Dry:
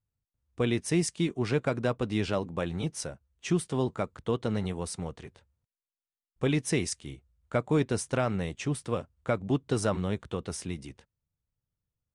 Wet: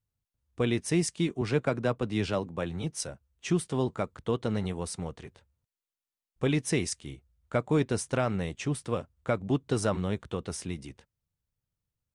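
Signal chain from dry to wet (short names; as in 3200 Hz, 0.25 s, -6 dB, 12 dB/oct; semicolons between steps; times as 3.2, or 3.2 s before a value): 1.41–3.08 three-band expander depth 40%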